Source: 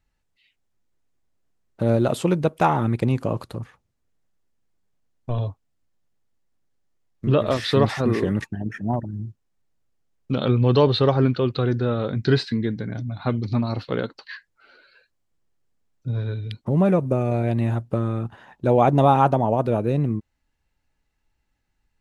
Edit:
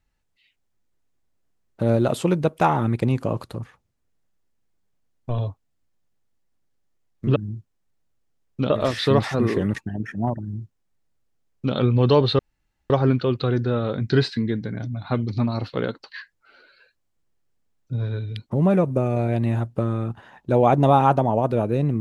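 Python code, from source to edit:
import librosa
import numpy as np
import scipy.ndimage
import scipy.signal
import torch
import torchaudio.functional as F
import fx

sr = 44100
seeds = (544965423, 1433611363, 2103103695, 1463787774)

y = fx.edit(x, sr, fx.duplicate(start_s=9.07, length_s=1.34, to_s=7.36),
    fx.insert_room_tone(at_s=11.05, length_s=0.51), tone=tone)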